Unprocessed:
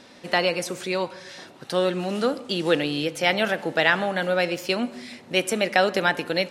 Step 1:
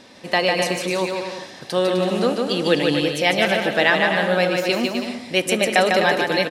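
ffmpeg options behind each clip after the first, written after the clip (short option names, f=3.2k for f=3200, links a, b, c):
-filter_complex "[0:a]bandreject=f=1.4k:w=10,asplit=2[a][b];[b]aecho=0:1:150|255|328.5|380|416:0.631|0.398|0.251|0.158|0.1[c];[a][c]amix=inputs=2:normalize=0,volume=2.5dB"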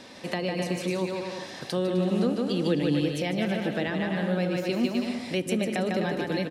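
-filter_complex "[0:a]acrossover=split=330[a][b];[b]acompressor=threshold=-34dB:ratio=4[c];[a][c]amix=inputs=2:normalize=0"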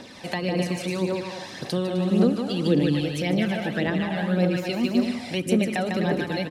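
-af "aphaser=in_gain=1:out_gain=1:delay=1.5:decay=0.46:speed=1.8:type=triangular,volume=1.5dB"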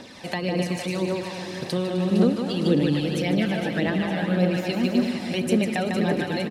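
-af "aecho=1:1:459|918|1377|1836|2295|2754|3213:0.299|0.176|0.104|0.0613|0.0362|0.0213|0.0126"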